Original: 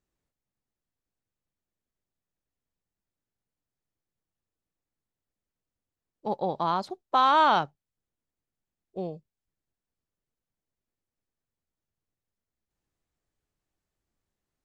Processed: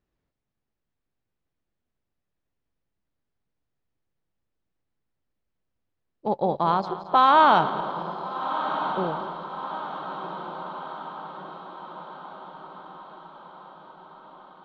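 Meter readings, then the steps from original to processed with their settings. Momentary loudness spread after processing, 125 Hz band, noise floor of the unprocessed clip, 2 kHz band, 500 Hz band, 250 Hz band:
24 LU, +6.0 dB, below −85 dBFS, +4.5 dB, +5.5 dB, +6.0 dB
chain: feedback delay that plays each chunk backwards 110 ms, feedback 72%, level −13 dB
high-frequency loss of the air 180 metres
feedback delay with all-pass diffusion 1,379 ms, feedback 57%, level −9.5 dB
level +5 dB

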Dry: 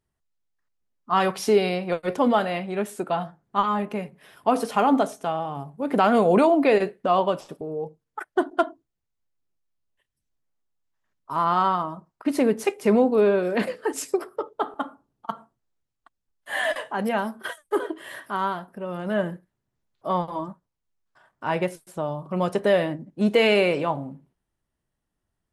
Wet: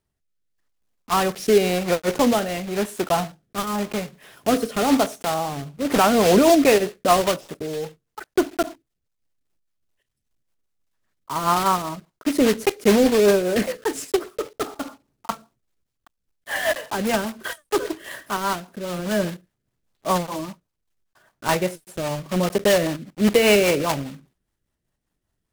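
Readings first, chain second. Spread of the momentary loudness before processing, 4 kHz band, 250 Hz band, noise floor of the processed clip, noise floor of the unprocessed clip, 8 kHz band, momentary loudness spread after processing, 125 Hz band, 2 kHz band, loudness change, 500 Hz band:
15 LU, +6.5 dB, +3.0 dB, −79 dBFS, −82 dBFS, +11.5 dB, 15 LU, +3.5 dB, +3.0 dB, +2.5 dB, +2.5 dB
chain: one scale factor per block 3 bits
rotating-speaker cabinet horn 0.9 Hz, later 5 Hz, at 0:05.55
level +4.5 dB

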